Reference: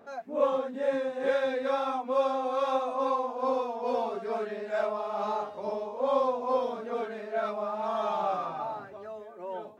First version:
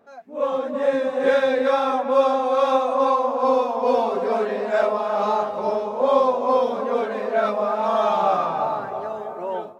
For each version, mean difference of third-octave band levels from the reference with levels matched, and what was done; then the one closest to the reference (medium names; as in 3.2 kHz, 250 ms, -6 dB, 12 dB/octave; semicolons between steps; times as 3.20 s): 2.0 dB: on a send: tape echo 328 ms, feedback 71%, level -9 dB, low-pass 1.4 kHz; on the sum: level rider gain up to 14 dB; trim -4 dB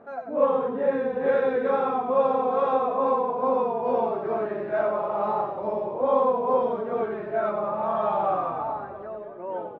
6.0 dB: low-pass 1.7 kHz 12 dB/octave; frequency-shifting echo 93 ms, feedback 50%, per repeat -34 Hz, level -7 dB; trim +4.5 dB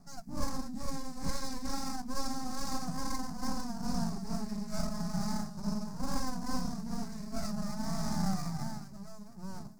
14.0 dB: half-wave rectifier; FFT filter 100 Hz 0 dB, 170 Hz +14 dB, 490 Hz -23 dB, 720 Hz -9 dB, 3.3 kHz -19 dB, 4.9 kHz +10 dB; trim +4 dB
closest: first